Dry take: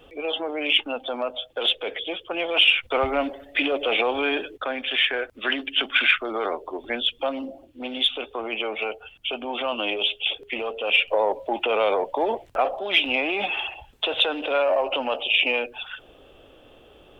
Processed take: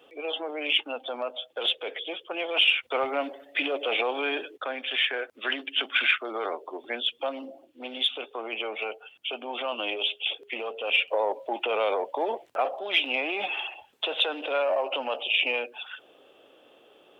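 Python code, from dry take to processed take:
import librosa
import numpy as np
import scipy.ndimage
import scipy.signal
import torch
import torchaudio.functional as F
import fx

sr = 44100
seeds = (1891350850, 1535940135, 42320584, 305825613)

y = scipy.signal.sosfilt(scipy.signal.butter(2, 300.0, 'highpass', fs=sr, output='sos'), x)
y = y * 10.0 ** (-4.0 / 20.0)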